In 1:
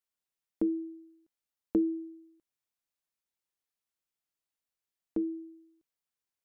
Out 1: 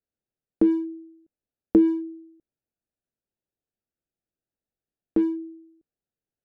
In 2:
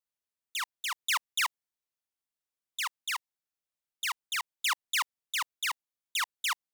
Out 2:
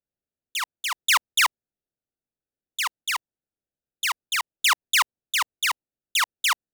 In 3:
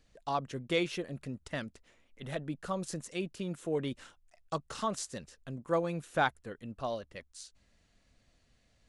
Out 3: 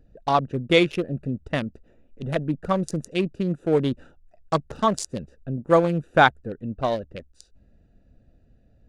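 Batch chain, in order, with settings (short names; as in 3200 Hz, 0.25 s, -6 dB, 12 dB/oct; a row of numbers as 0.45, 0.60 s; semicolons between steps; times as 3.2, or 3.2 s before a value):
Wiener smoothing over 41 samples; match loudness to -24 LUFS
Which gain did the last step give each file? +10.5, +10.5, +13.0 dB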